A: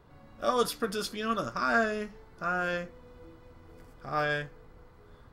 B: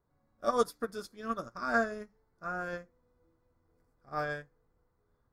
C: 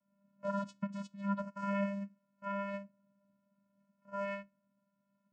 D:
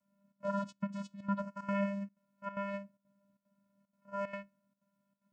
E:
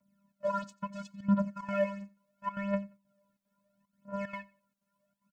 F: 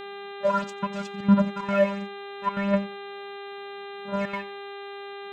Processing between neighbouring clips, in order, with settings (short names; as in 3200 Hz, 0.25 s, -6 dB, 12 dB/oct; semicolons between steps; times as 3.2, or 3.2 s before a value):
bell 2900 Hz -14 dB 0.56 oct; in parallel at -1 dB: limiter -25 dBFS, peak gain reduction 9.5 dB; on the sum: upward expander 2.5:1, over -36 dBFS; gain -1.5 dB
low shelf 420 Hz -4.5 dB; limiter -28 dBFS, peak gain reduction 11.5 dB; vocoder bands 8, square 199 Hz; gain +2.5 dB
step gate "xxxx.xxxx.x" 187 bpm -12 dB; gain +1 dB
phaser 0.73 Hz, delay 2.6 ms, feedback 72%; feedback echo 90 ms, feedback 24%, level -23 dB
buzz 400 Hz, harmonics 10, -47 dBFS -5 dB/oct; gain +8.5 dB